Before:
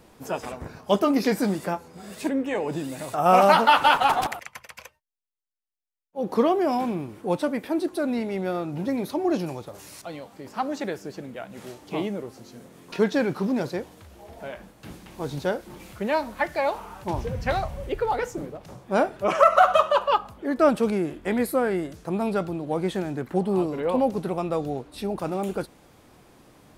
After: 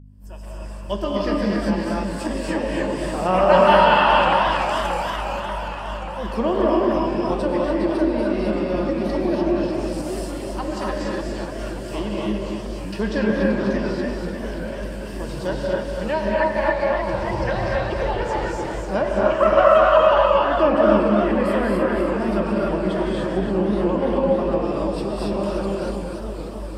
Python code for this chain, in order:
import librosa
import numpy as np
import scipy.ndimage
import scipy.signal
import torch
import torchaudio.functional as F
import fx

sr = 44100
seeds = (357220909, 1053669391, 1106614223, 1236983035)

y = fx.fade_in_head(x, sr, length_s=1.68)
y = fx.ripple_eq(y, sr, per_octave=1.3, db=8)
y = fx.add_hum(y, sr, base_hz=50, snr_db=15)
y = fx.high_shelf(y, sr, hz=5100.0, db=7.5)
y = y + 10.0 ** (-5.0 / 20.0) * np.pad(y, (int(240 * sr / 1000.0), 0))[:len(y)]
y = fx.rev_gated(y, sr, seeds[0], gate_ms=320, shape='rising', drr_db=-3.0)
y = fx.env_lowpass_down(y, sr, base_hz=2700.0, full_db=-13.0)
y = fx.echo_warbled(y, sr, ms=584, feedback_pct=62, rate_hz=2.8, cents=216, wet_db=-9.0)
y = F.gain(torch.from_numpy(y), -3.0).numpy()